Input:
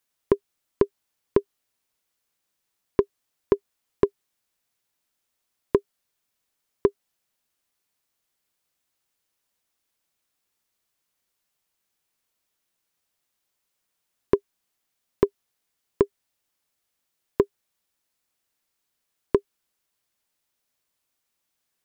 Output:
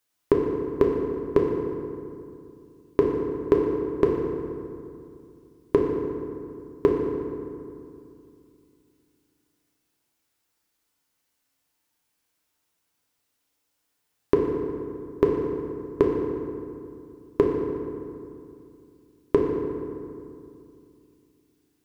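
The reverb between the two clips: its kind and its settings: FDN reverb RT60 2.5 s, low-frequency decay 1.3×, high-frequency decay 0.55×, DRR -1 dB

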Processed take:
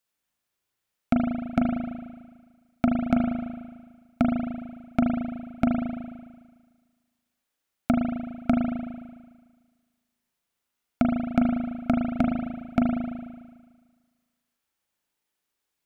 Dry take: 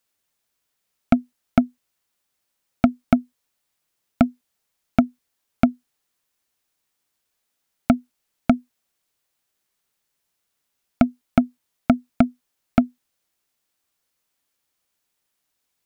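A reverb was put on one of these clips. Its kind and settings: spring tank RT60 1.5 s, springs 37 ms, chirp 65 ms, DRR -0.5 dB; trim -6.5 dB

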